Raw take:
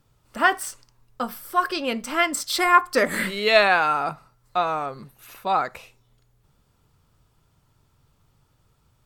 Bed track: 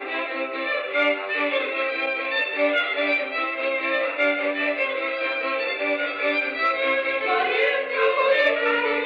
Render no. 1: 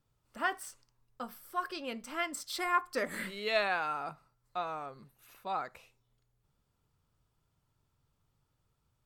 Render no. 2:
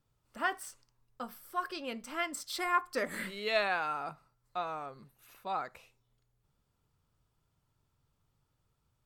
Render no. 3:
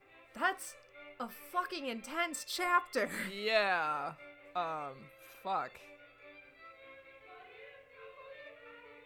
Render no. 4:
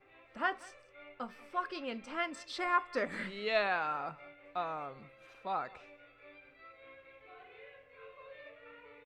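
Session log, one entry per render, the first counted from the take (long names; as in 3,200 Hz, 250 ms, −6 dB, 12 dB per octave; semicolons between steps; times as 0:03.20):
level −13.5 dB
no processing that can be heard
mix in bed track −32.5 dB
high-frequency loss of the air 120 metres; single-tap delay 187 ms −22 dB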